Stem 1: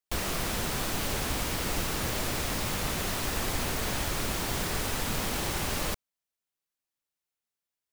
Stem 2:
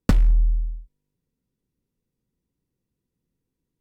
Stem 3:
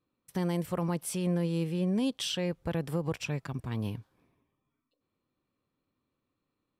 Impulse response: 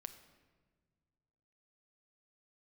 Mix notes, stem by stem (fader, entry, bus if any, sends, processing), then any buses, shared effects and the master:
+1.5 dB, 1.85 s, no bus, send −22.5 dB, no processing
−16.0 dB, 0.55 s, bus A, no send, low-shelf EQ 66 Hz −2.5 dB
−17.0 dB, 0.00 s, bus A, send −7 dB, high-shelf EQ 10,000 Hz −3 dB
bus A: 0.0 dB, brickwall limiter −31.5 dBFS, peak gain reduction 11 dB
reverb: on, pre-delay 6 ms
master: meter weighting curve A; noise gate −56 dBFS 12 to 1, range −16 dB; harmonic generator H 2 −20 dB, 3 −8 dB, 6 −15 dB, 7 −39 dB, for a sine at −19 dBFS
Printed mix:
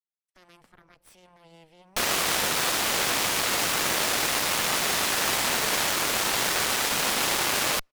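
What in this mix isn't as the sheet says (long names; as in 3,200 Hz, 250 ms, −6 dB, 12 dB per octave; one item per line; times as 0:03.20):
stem 1 +1.5 dB → +9.0 dB
stem 2: missing low-shelf EQ 66 Hz −2.5 dB
stem 3 −17.0 dB → −5.5 dB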